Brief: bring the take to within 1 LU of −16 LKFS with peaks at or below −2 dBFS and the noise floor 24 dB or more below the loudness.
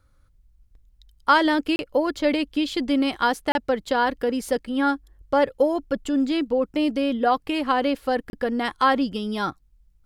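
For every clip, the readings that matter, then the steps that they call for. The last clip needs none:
number of dropouts 3; longest dropout 31 ms; integrated loudness −23.5 LKFS; sample peak −5.0 dBFS; target loudness −16.0 LKFS
→ repair the gap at 0:01.76/0:03.52/0:08.30, 31 ms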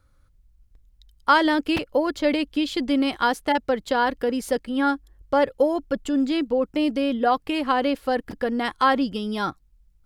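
number of dropouts 0; integrated loudness −23.5 LKFS; sample peak −5.0 dBFS; target loudness −16.0 LKFS
→ level +7.5 dB
brickwall limiter −2 dBFS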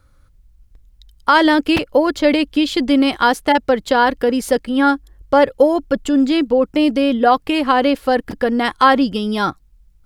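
integrated loudness −16.0 LKFS; sample peak −2.0 dBFS; background noise floor −53 dBFS

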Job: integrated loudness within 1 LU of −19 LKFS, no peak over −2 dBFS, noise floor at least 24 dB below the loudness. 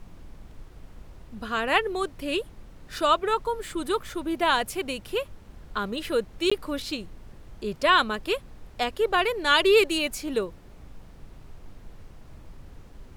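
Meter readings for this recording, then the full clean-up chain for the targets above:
number of dropouts 1; longest dropout 15 ms; background noise floor −48 dBFS; target noise floor −50 dBFS; integrated loudness −25.5 LKFS; sample peak −7.0 dBFS; target loudness −19.0 LKFS
→ repair the gap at 0:06.50, 15 ms
noise reduction from a noise print 6 dB
level +6.5 dB
brickwall limiter −2 dBFS

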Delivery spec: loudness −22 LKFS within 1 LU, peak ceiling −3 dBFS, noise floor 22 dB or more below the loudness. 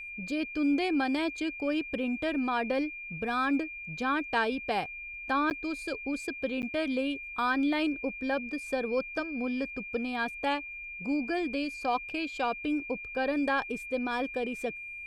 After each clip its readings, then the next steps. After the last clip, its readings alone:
number of dropouts 2; longest dropout 9.3 ms; interfering tone 2,400 Hz; level of the tone −39 dBFS; integrated loudness −31.5 LKFS; sample peak −16.5 dBFS; target loudness −22.0 LKFS
→ repair the gap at 0:05.50/0:06.62, 9.3 ms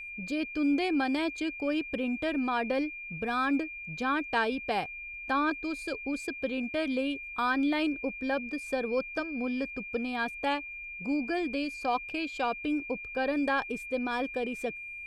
number of dropouts 0; interfering tone 2,400 Hz; level of the tone −39 dBFS
→ notch filter 2,400 Hz, Q 30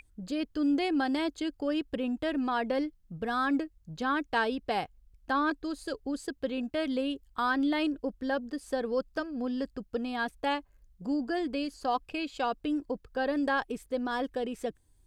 interfering tone none found; integrated loudness −32.0 LKFS; sample peak −17.5 dBFS; target loudness −22.0 LKFS
→ level +10 dB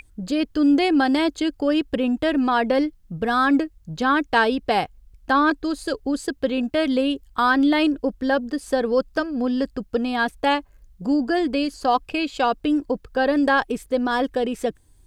integrated loudness −22.0 LKFS; sample peak −7.5 dBFS; background noise floor −54 dBFS

